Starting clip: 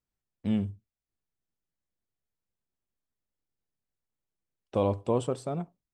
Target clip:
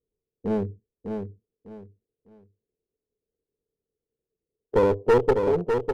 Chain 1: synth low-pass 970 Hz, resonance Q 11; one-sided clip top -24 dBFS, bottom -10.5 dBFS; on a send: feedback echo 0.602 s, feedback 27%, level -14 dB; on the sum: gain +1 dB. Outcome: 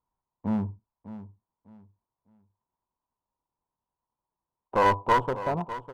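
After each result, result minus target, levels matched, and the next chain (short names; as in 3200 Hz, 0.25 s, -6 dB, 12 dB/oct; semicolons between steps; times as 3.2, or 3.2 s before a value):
1000 Hz band +8.0 dB; echo-to-direct -8 dB
synth low-pass 440 Hz, resonance Q 11; one-sided clip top -24 dBFS, bottom -10.5 dBFS; on a send: feedback echo 0.602 s, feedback 27%, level -14 dB; on the sum: gain +1 dB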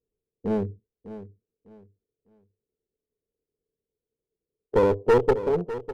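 echo-to-direct -8 dB
synth low-pass 440 Hz, resonance Q 11; one-sided clip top -24 dBFS, bottom -10.5 dBFS; on a send: feedback echo 0.602 s, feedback 27%, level -6 dB; on the sum: gain +1 dB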